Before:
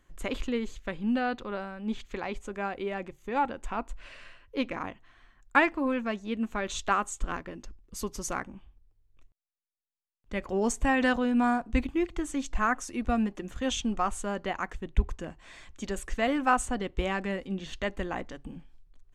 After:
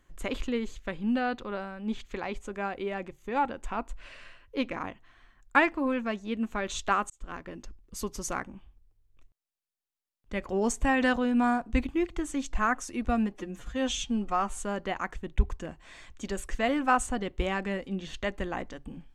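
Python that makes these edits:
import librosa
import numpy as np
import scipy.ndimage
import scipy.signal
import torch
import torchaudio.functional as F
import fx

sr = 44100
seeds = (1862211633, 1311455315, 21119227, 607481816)

y = fx.edit(x, sr, fx.fade_in_span(start_s=7.1, length_s=0.44),
    fx.stretch_span(start_s=13.34, length_s=0.82, factor=1.5), tone=tone)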